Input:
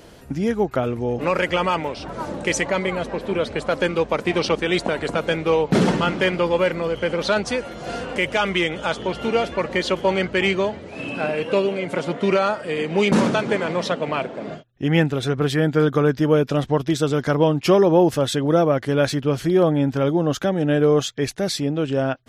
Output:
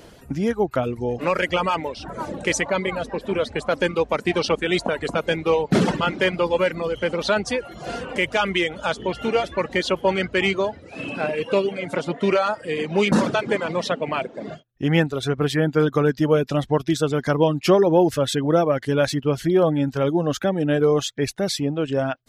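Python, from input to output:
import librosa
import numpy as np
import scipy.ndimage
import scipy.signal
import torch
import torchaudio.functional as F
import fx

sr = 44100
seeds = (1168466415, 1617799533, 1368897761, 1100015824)

y = fx.dereverb_blind(x, sr, rt60_s=0.7)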